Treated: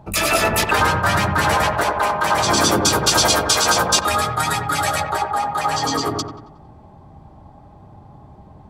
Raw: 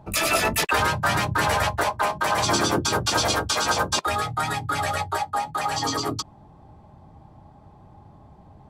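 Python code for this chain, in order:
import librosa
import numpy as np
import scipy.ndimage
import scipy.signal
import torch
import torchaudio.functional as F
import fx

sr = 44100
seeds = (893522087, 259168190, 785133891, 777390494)

y = fx.high_shelf(x, sr, hz=4500.0, db=8.5, at=(2.57, 5.0))
y = fx.echo_wet_lowpass(y, sr, ms=91, feedback_pct=45, hz=1500.0, wet_db=-3.5)
y = y * 10.0 ** (3.5 / 20.0)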